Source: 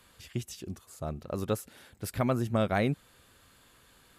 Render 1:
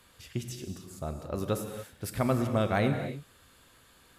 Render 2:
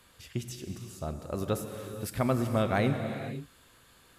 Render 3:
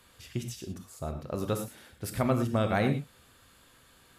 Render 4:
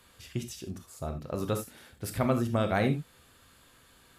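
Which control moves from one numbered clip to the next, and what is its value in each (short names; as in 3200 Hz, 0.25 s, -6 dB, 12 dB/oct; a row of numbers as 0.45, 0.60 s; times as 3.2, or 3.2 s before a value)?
non-linear reverb, gate: 0.31, 0.54, 0.14, 0.1 s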